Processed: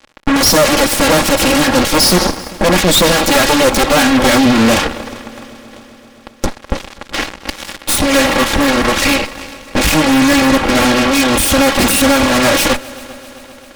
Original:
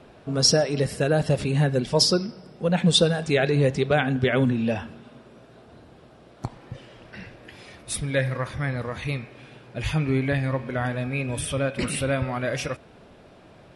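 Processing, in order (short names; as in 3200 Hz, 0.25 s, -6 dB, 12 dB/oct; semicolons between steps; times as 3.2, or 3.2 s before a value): minimum comb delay 3.6 ms; sample leveller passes 5; vibrato 0.42 Hz 10 cents; added harmonics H 7 -18 dB, 8 -7 dB, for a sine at -5.5 dBFS; multi-head echo 0.131 s, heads second and third, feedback 64%, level -23 dB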